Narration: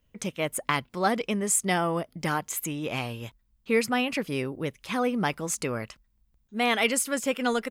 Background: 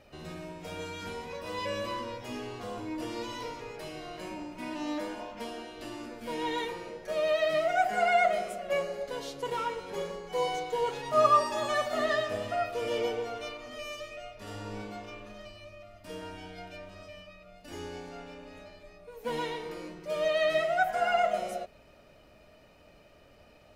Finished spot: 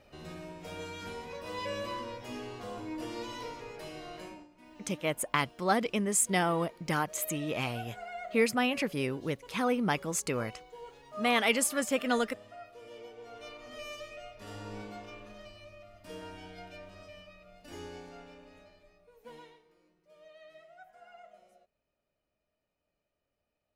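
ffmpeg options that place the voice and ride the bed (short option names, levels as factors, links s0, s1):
-filter_complex "[0:a]adelay=4650,volume=0.75[s0];[1:a]volume=3.98,afade=t=out:st=4.16:d=0.32:silence=0.177828,afade=t=in:st=13.15:d=0.61:silence=0.188365,afade=t=out:st=17.68:d=1.96:silence=0.0595662[s1];[s0][s1]amix=inputs=2:normalize=0"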